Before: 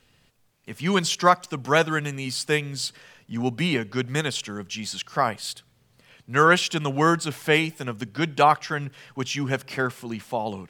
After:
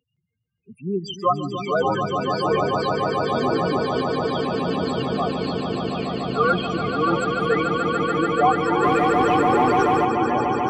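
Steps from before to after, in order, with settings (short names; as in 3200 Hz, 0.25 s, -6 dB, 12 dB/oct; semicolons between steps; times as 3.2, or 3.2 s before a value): loudest bins only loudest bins 4; HPF 220 Hz 12 dB/oct; echoes that change speed 0.166 s, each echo -5 st, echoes 3, each echo -6 dB; swelling echo 0.145 s, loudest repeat 8, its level -7 dB; 8.83–10.05 sample leveller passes 1; gain +1.5 dB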